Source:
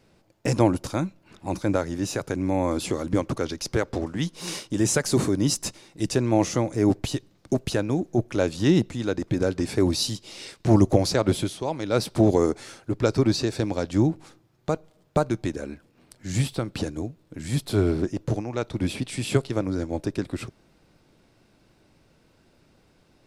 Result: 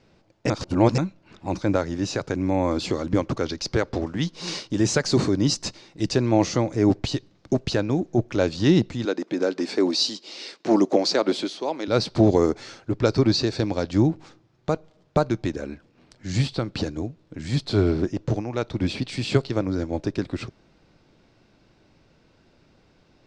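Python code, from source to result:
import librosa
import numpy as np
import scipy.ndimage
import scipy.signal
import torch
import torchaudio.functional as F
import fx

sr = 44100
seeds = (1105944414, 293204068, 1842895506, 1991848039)

y = fx.highpass(x, sr, hz=240.0, slope=24, at=(9.05, 11.88))
y = fx.edit(y, sr, fx.reverse_span(start_s=0.5, length_s=0.48), tone=tone)
y = scipy.signal.sosfilt(scipy.signal.butter(4, 6400.0, 'lowpass', fs=sr, output='sos'), y)
y = fx.dynamic_eq(y, sr, hz=4400.0, q=5.0, threshold_db=-52.0, ratio=4.0, max_db=6)
y = y * 10.0 ** (1.5 / 20.0)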